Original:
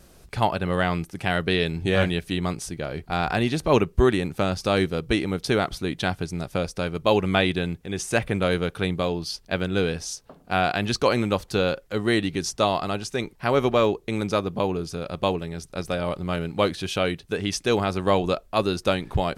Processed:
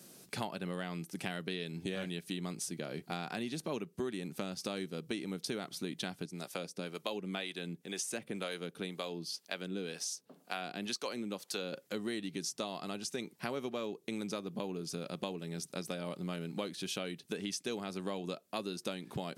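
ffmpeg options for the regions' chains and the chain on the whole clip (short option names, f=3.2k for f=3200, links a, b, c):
-filter_complex "[0:a]asettb=1/sr,asplit=3[a][b][c];[a]atrim=end=6.254[d];[b]atrim=start=6.25:end=11.73,asetpts=PTS-STARTPTS,afade=t=in:d=0.004:c=qsin,afade=t=out:st=5.476:d=0.004:c=qsin,lowshelf=f=150:g=-12,acrossover=split=460[e][f];[e]aeval=exprs='val(0)*(1-0.7/2+0.7/2*cos(2*PI*2*n/s))':c=same[g];[f]aeval=exprs='val(0)*(1-0.7/2-0.7/2*cos(2*PI*2*n/s))':c=same[h];[g][h]amix=inputs=2:normalize=0[i];[c]atrim=start=11.726[j];[d][i]acrossfade=d=0.004:c1=hsin:c2=qsin[k];[k][j]acrossfade=d=0.004:c1=qsin:c2=hsin,highpass=f=180:w=0.5412,highpass=f=180:w=1.3066,equalizer=f=960:w=0.31:g=-11,acompressor=threshold=-39dB:ratio=6,volume=3.5dB"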